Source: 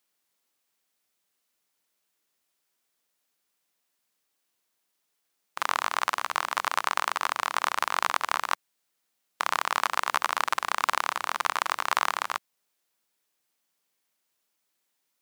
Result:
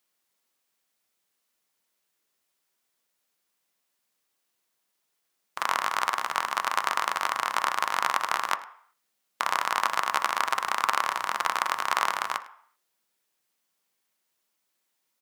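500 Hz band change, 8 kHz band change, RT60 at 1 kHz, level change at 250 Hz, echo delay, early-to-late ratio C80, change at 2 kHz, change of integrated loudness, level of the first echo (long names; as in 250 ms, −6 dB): +0.5 dB, 0.0 dB, 0.60 s, +0.5 dB, 104 ms, 16.5 dB, +0.5 dB, +0.5 dB, −20.0 dB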